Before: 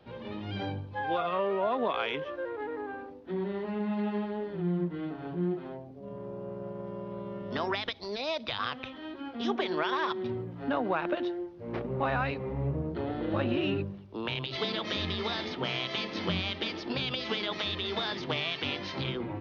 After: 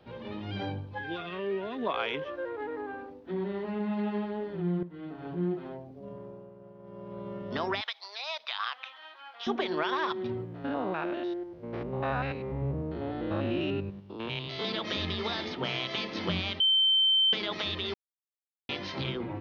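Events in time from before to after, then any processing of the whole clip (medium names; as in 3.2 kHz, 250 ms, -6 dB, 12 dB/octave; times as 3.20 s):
0.98–1.86 s: time-frequency box 470–1400 Hz -12 dB
4.83–5.34 s: fade in, from -13 dB
6.02–7.29 s: dip -11.5 dB, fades 0.49 s linear
7.81–9.47 s: high-pass 810 Hz 24 dB/octave
10.45–14.65 s: spectrogram pixelated in time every 100 ms
16.60–17.33 s: bleep 3.1 kHz -20.5 dBFS
17.94–18.69 s: mute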